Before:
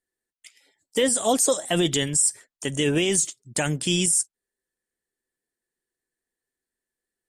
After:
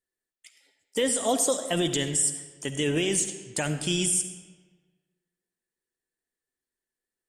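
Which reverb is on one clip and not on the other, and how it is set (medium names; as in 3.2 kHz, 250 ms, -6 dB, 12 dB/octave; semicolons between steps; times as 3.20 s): algorithmic reverb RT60 1.4 s, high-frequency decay 0.75×, pre-delay 25 ms, DRR 9 dB; trim -4 dB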